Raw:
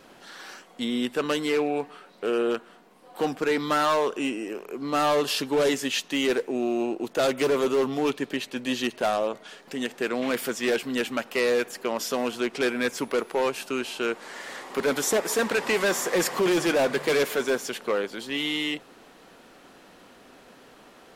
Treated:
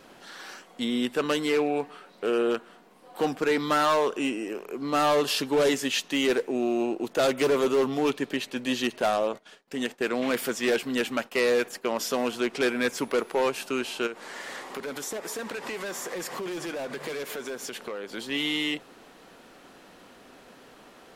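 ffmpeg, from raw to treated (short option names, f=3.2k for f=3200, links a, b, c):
-filter_complex "[0:a]asplit=3[a][b][c];[a]afade=t=out:st=9.37:d=0.02[d];[b]agate=range=-33dB:threshold=-39dB:ratio=3:release=100:detection=peak,afade=t=in:st=9.37:d=0.02,afade=t=out:st=11.83:d=0.02[e];[c]afade=t=in:st=11.83:d=0.02[f];[d][e][f]amix=inputs=3:normalize=0,asplit=3[g][h][i];[g]afade=t=out:st=14.06:d=0.02[j];[h]acompressor=threshold=-32dB:ratio=5:attack=3.2:release=140:knee=1:detection=peak,afade=t=in:st=14.06:d=0.02,afade=t=out:st=18.11:d=0.02[k];[i]afade=t=in:st=18.11:d=0.02[l];[j][k][l]amix=inputs=3:normalize=0"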